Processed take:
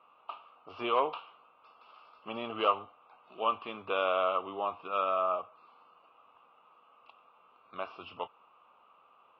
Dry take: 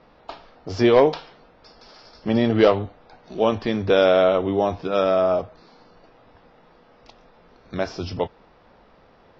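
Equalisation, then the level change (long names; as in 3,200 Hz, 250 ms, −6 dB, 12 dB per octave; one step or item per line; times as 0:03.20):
pair of resonant band-passes 1,800 Hz, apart 1.2 octaves
high-frequency loss of the air 380 metres
+5.5 dB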